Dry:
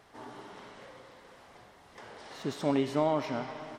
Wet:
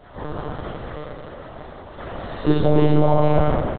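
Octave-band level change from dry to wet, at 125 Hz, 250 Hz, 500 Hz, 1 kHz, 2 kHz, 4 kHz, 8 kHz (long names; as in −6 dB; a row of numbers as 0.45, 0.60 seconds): +20.5 dB, +12.0 dB, +12.0 dB, +11.5 dB, +9.0 dB, +6.5 dB, below −25 dB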